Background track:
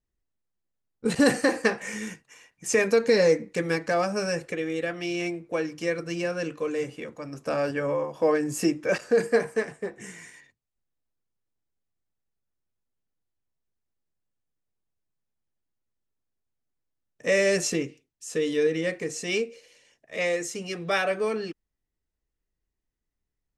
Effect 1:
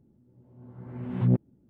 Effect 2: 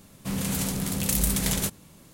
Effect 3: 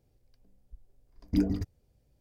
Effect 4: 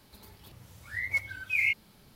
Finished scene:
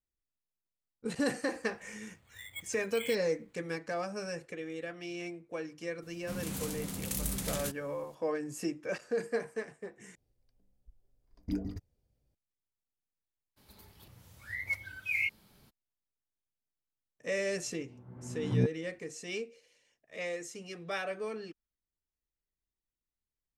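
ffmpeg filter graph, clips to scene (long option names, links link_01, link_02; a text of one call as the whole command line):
ffmpeg -i bed.wav -i cue0.wav -i cue1.wav -i cue2.wav -i cue3.wav -filter_complex "[4:a]asplit=2[link_01][link_02];[0:a]volume=-11dB[link_03];[link_01]acrusher=samples=8:mix=1:aa=0.000001[link_04];[link_02]highshelf=frequency=11000:gain=3.5[link_05];[link_03]asplit=2[link_06][link_07];[link_06]atrim=end=10.154[link_08];[3:a]atrim=end=2.2,asetpts=PTS-STARTPTS,volume=-8.5dB[link_09];[link_07]atrim=start=12.346[link_10];[link_04]atrim=end=2.15,asetpts=PTS-STARTPTS,volume=-15dB,afade=type=in:duration=0.004:curve=hsin,afade=type=out:start_time=2.146:duration=0.004:curve=hsin,adelay=1420[link_11];[2:a]atrim=end=2.13,asetpts=PTS-STARTPTS,volume=-10.5dB,afade=type=in:duration=0.004:curve=hsin,afade=type=out:start_time=2.126:duration=0.004:curve=hsin,adelay=6020[link_12];[link_05]atrim=end=2.15,asetpts=PTS-STARTPTS,volume=-5dB,afade=type=in:duration=0.02,afade=type=out:start_time=2.13:duration=0.02,adelay=13560[link_13];[1:a]atrim=end=1.69,asetpts=PTS-STARTPTS,volume=-6dB,afade=type=in:duration=0.004:curve=hsin,afade=type=out:start_time=1.686:duration=0.004:curve=hsin,adelay=17300[link_14];[link_08][link_09]acrossfade=duration=0.004:curve1=hsin:curve2=hsin[link_15];[link_15][link_10]acrossfade=duration=0.004:curve1=hsin:curve2=hsin[link_16];[link_16][link_11][link_12][link_13][link_14]amix=inputs=5:normalize=0" out.wav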